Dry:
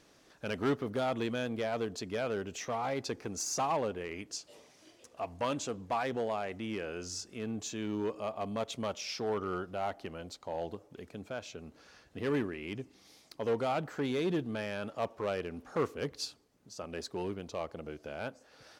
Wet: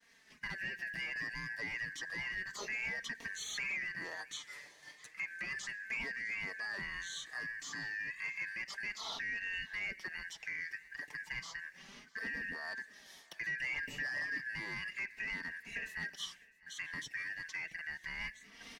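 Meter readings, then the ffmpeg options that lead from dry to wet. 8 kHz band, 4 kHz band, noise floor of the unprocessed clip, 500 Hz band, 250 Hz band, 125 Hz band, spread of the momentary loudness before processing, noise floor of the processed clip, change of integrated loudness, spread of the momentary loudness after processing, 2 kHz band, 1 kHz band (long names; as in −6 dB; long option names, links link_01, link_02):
−6.5 dB, −1.5 dB, −63 dBFS, −23.0 dB, −18.0 dB, −14.0 dB, 11 LU, −61 dBFS, −3.5 dB, 8 LU, +8.5 dB, −15.5 dB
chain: -filter_complex "[0:a]afftfilt=real='real(if(lt(b,272),68*(eq(floor(b/68),0)*1+eq(floor(b/68),1)*0+eq(floor(b/68),2)*3+eq(floor(b/68),3)*2)+mod(b,68),b),0)':imag='imag(if(lt(b,272),68*(eq(floor(b/68),0)*1+eq(floor(b/68),1)*0+eq(floor(b/68),2)*3+eq(floor(b/68),3)*2)+mod(b,68),b),0)':win_size=2048:overlap=0.75,agate=range=-33dB:threshold=-56dB:ratio=3:detection=peak,acrossover=split=2900[link_01][link_02];[link_02]acompressor=threshold=-50dB:ratio=4:attack=1:release=60[link_03];[link_01][link_03]amix=inputs=2:normalize=0,lowshelf=frequency=63:gain=-7.5,alimiter=level_in=4.5dB:limit=-24dB:level=0:latency=1:release=12,volume=-4.5dB,acrossover=split=390|3000[link_04][link_05][link_06];[link_04]acompressor=threshold=-53dB:ratio=4[link_07];[link_05]acompressor=threshold=-48dB:ratio=4[link_08];[link_07][link_08][link_06]amix=inputs=3:normalize=0,flanger=delay=4.3:depth=2.6:regen=-1:speed=0.32:shape=sinusoidal,asoftclip=type=tanh:threshold=-36dB,aecho=1:1:655|1310:0.0708|0.0227,volume=8dB"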